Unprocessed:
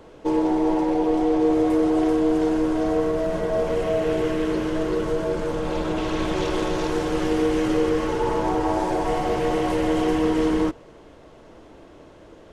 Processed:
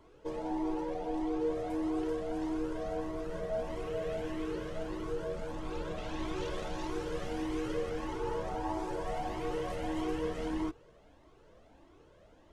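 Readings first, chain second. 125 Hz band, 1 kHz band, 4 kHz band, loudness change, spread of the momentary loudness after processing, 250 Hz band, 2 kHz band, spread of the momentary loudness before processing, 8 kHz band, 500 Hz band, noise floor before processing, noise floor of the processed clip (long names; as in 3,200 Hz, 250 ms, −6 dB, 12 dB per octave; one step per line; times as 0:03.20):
−12.0 dB, −13.0 dB, −13.0 dB, −14.0 dB, 5 LU, −15.0 dB, −12.5 dB, 5 LU, −13.0 dB, −14.0 dB, −47 dBFS, −60 dBFS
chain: flanger whose copies keep moving one way rising 1.6 Hz
level −8.5 dB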